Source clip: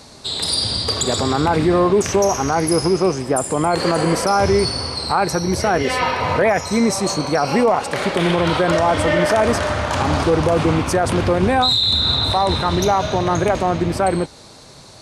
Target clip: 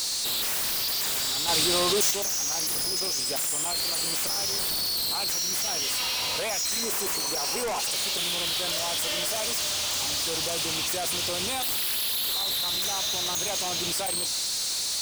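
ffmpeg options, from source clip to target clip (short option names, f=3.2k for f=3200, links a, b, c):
-filter_complex "[0:a]aexciter=amount=14:drive=6:freq=2.8k,aeval=exprs='0.891*sin(PI/2*1.41*val(0)/0.891)':c=same,lowshelf=f=300:g=-11,alimiter=limit=-13dB:level=0:latency=1,asettb=1/sr,asplit=3[a][b][c];[a]atrim=end=6.834[d];[b]atrim=start=6.83:end=7.8,asetpts=PTS-STARTPTS,afade=t=in:d=0.004:c=qsin,afade=t=out:st=0.966:d=0.004:c=qsin,equalizer=f=400:t=o:w=0.67:g=10,equalizer=f=1k:t=o:w=0.67:g=8,equalizer=f=4k:t=o:w=0.67:g=-9[e];[c]atrim=start=7.796[f];[d][e]acrossfade=d=0.004:c1=hsin:c2=qsin[g];[g][f]acrossfade=d=0.004:c1=qsin:c2=hsin,asoftclip=type=tanh:threshold=-27dB,asettb=1/sr,asplit=3[h][i][j];[h]atrim=end=1.484[k];[i]atrim=start=1.48:end=2.11,asetpts=PTS-STARTPTS,afade=t=in:d=0.004:c=qsin,afade=t=out:st=0.626:d=0.004:c=qsin,acontrast=34[l];[j]atrim=start=2.106[m];[k][l]acrossfade=d=0.004:c1=hsin:c2=qsin[n];[n][m]acrossfade=d=0.004:c1=qsin:c2=hsin"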